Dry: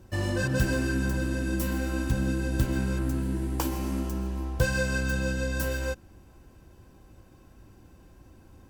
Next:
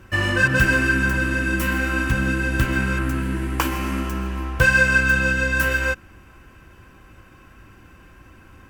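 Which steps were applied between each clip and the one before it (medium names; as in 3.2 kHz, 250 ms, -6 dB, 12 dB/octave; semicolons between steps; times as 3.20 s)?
high-order bell 1.8 kHz +11.5 dB; trim +4.5 dB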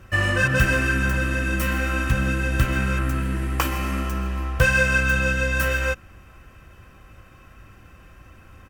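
comb 1.6 ms, depth 36%; trim -1 dB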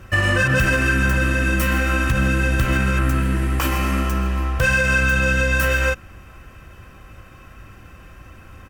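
peak limiter -14 dBFS, peak gain reduction 8.5 dB; trim +5 dB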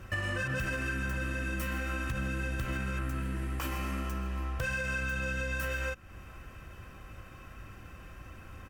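compression 2.5:1, threshold -30 dBFS, peak gain reduction 11 dB; trim -5.5 dB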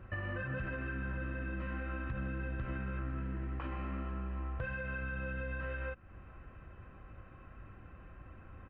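Gaussian low-pass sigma 3.7 samples; trim -4 dB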